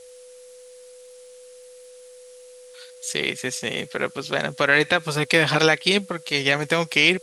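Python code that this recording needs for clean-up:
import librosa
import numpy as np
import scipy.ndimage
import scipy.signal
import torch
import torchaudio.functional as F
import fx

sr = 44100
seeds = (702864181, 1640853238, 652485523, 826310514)

y = fx.fix_declick_ar(x, sr, threshold=6.5)
y = fx.notch(y, sr, hz=500.0, q=30.0)
y = fx.noise_reduce(y, sr, print_start_s=0.92, print_end_s=1.42, reduce_db=21.0)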